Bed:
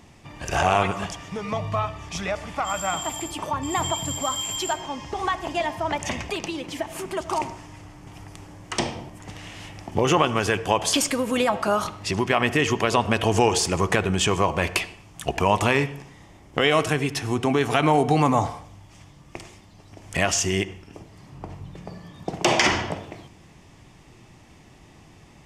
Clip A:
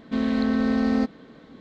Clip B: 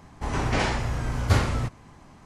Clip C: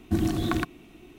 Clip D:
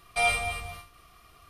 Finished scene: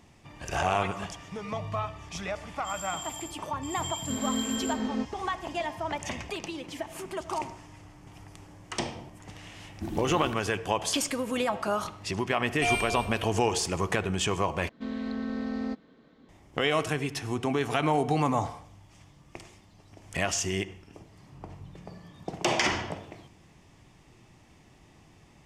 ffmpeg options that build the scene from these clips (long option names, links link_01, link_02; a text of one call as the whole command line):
ffmpeg -i bed.wav -i cue0.wav -i cue1.wav -i cue2.wav -i cue3.wav -filter_complex "[1:a]asplit=2[link_01][link_02];[0:a]volume=-6.5dB[link_03];[link_01]flanger=delay=15.5:depth=7.6:speed=1.4[link_04];[4:a]aecho=1:1:2.9:0.93[link_05];[link_03]asplit=2[link_06][link_07];[link_06]atrim=end=14.694[link_08];[link_02]atrim=end=1.6,asetpts=PTS-STARTPTS,volume=-10.5dB[link_09];[link_07]atrim=start=16.286[link_10];[link_04]atrim=end=1.6,asetpts=PTS-STARTPTS,volume=-6.5dB,afade=type=in:duration=0.004:curve=hsin,afade=type=out:start_time=1.596:duration=0.004:curve=hsin,adelay=175077S[link_11];[3:a]atrim=end=1.18,asetpts=PTS-STARTPTS,volume=-11dB,afade=type=in:duration=0.004:curve=hsin,afade=type=out:start_time=1.176:duration=0.004:curve=hsin,adelay=427770S[link_12];[link_05]atrim=end=1.49,asetpts=PTS-STARTPTS,volume=-7.5dB,afade=type=in:duration=0.004:curve=hsin,afade=type=out:start_time=1.486:duration=0.004:curve=hsin,adelay=12450[link_13];[link_08][link_09]acrossfade=duration=0.004:curve1=hsin:curve2=hsin[link_14];[link_14][link_10]acrossfade=duration=0.004:curve1=hsin:curve2=hsin[link_15];[link_15][link_11][link_12][link_13]amix=inputs=4:normalize=0" out.wav